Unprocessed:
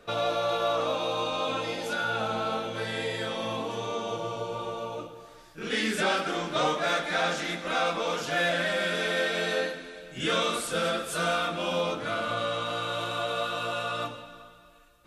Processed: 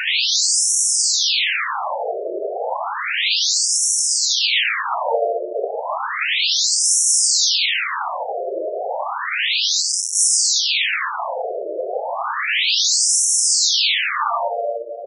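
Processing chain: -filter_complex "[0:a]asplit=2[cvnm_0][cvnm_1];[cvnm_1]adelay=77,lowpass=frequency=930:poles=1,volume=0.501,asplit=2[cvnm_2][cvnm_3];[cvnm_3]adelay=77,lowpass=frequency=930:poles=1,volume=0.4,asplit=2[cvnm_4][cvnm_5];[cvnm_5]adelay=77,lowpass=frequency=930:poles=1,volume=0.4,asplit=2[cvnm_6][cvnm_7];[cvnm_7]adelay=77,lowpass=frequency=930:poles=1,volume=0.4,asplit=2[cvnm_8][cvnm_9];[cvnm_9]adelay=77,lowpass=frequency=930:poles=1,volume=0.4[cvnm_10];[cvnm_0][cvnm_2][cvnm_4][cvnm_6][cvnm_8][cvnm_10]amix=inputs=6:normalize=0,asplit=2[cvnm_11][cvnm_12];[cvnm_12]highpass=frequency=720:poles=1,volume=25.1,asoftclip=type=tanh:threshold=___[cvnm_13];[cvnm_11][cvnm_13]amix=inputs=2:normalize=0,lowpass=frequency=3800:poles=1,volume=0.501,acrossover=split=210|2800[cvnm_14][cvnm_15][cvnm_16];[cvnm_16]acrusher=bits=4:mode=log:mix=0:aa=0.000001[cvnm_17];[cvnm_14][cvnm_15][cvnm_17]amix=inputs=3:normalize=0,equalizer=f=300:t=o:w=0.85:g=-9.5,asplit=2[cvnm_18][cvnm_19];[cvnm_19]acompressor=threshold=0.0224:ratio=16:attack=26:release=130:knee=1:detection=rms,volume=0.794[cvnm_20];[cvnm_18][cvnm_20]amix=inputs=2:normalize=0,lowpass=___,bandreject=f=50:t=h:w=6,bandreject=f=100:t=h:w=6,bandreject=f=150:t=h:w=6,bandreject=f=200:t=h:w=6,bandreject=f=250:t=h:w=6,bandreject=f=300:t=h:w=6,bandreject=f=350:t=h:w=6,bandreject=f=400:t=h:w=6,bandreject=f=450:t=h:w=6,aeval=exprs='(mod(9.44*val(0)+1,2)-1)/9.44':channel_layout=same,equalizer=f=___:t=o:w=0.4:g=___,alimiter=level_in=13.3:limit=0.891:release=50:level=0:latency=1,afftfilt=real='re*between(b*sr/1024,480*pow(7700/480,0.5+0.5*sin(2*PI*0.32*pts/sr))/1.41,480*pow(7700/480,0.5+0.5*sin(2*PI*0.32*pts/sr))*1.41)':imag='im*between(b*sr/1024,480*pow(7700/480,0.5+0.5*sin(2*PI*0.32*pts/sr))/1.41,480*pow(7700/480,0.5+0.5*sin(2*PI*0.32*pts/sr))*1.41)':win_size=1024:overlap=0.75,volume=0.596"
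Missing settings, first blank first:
0.2, 11000, 1500, -6.5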